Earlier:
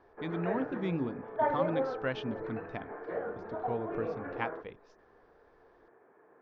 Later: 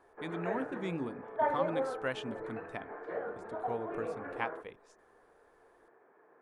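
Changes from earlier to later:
speech: remove Butterworth low-pass 5,700 Hz 48 dB per octave
master: add low-shelf EQ 290 Hz −7.5 dB

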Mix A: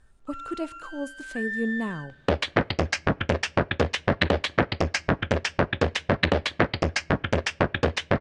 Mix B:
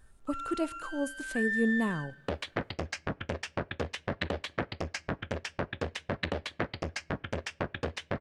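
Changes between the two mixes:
second sound −11.0 dB
master: remove low-pass filter 7,800 Hz 12 dB per octave

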